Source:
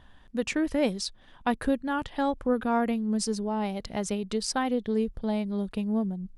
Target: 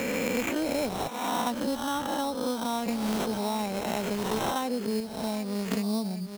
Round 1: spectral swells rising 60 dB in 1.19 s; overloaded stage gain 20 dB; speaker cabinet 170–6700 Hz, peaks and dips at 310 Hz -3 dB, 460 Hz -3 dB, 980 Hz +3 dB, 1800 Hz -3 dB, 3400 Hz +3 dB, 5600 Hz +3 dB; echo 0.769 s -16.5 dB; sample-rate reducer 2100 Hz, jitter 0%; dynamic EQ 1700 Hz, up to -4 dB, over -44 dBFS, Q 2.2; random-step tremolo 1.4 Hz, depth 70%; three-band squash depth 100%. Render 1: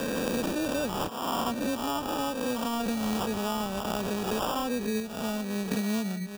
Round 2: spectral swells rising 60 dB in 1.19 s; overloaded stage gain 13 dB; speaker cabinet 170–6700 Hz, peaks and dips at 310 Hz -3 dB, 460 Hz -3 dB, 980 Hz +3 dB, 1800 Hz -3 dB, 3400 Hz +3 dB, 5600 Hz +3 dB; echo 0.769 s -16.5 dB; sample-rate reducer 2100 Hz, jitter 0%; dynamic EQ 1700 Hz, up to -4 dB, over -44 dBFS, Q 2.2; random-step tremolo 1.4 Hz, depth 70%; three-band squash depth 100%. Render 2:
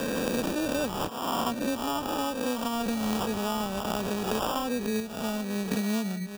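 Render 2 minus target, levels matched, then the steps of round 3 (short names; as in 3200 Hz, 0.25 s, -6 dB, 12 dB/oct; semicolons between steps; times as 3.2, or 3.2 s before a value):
sample-rate reducer: distortion +5 dB
spectral swells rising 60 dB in 1.19 s; overloaded stage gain 13 dB; speaker cabinet 170–6700 Hz, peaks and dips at 310 Hz -3 dB, 460 Hz -3 dB, 980 Hz +3 dB, 1800 Hz -3 dB, 3400 Hz +3 dB, 5600 Hz +3 dB; echo 0.769 s -16.5 dB; sample-rate reducer 4700 Hz, jitter 0%; dynamic EQ 1700 Hz, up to -4 dB, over -44 dBFS, Q 2.2; random-step tremolo 1.4 Hz, depth 70%; three-band squash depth 100%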